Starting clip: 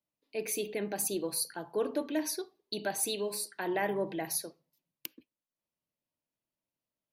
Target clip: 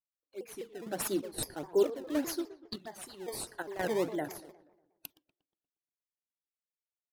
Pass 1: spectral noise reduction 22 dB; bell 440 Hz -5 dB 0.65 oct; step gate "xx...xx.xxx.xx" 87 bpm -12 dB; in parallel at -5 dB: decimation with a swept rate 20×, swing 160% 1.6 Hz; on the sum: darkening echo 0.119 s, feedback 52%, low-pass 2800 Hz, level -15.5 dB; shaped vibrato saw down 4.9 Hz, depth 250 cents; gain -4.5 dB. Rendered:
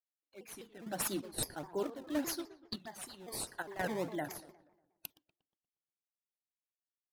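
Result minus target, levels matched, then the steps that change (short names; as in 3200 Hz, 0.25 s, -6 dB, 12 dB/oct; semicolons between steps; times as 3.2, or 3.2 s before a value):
500 Hz band -4.0 dB
change: bell 440 Hz +6.5 dB 0.65 oct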